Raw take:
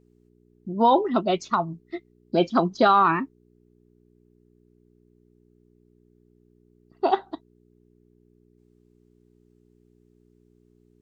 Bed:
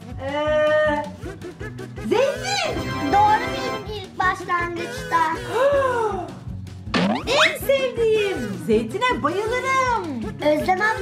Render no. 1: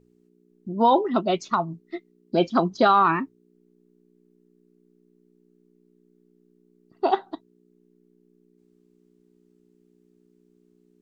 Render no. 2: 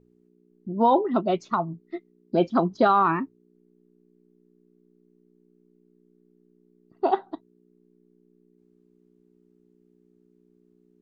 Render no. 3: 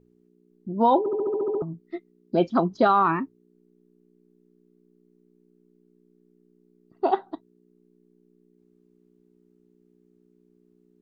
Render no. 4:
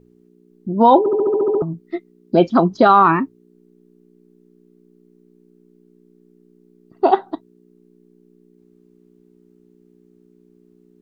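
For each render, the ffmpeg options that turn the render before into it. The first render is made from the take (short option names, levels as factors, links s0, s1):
-af "bandreject=f=60:t=h:w=4,bandreject=f=120:t=h:w=4"
-af "highshelf=f=2200:g=-10.5"
-filter_complex "[0:a]asplit=10[s0][s1][s2][s3][s4][s5][s6][s7][s8][s9];[s0]atrim=end=1.062[s10];[s1]atrim=start=0.988:end=1.062[s11];[s2]atrim=start=0.988:end=1.062[s12];[s3]atrim=start=0.988:end=1.062[s13];[s4]atrim=start=0.988:end=1.062[s14];[s5]atrim=start=0.988:end=1.062[s15];[s6]atrim=start=0.988:end=1.062[s16];[s7]atrim=start=0.988:end=1.062[s17];[s8]atrim=start=0.988:end=1.062[s18];[s9]atrim=start=1.618[s19];[s10][s11]acrossfade=d=0.004:c1=hsin:c2=hsin[s20];[s20][s12]acrossfade=d=0.004:c1=hsin:c2=hsin[s21];[s21][s13]acrossfade=d=0.004:c1=hsin:c2=hsin[s22];[s22][s14]acrossfade=d=0.004:c1=hsin:c2=hsin[s23];[s23][s15]acrossfade=d=0.004:c1=hsin:c2=hsin[s24];[s24][s16]acrossfade=d=0.004:c1=hsin:c2=hsin[s25];[s25][s17]acrossfade=d=0.004:c1=hsin:c2=hsin[s26];[s26][s18]acrossfade=d=0.004:c1=hsin:c2=hsin[s27];[s27][s19]acrossfade=d=0.004:c1=hsin:c2=hsin"
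-af "volume=2.66,alimiter=limit=0.794:level=0:latency=1"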